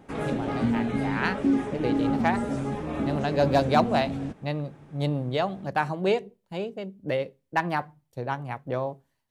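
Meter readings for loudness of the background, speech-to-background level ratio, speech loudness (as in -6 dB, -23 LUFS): -28.5 LUFS, -0.5 dB, -29.0 LUFS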